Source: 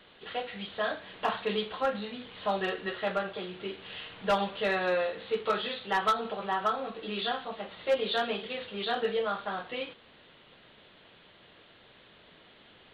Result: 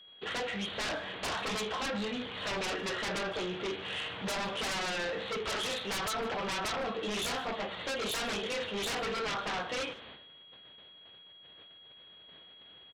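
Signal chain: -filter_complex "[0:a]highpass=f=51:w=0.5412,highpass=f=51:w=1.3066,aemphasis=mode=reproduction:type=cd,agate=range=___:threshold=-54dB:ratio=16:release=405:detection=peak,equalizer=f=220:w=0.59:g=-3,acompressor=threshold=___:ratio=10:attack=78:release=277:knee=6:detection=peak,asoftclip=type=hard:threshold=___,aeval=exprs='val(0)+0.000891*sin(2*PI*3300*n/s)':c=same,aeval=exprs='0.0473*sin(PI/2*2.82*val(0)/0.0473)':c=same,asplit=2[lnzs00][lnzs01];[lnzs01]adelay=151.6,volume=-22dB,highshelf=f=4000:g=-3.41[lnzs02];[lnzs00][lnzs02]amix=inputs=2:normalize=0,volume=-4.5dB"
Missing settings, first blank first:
-19dB, -30dB, -27dB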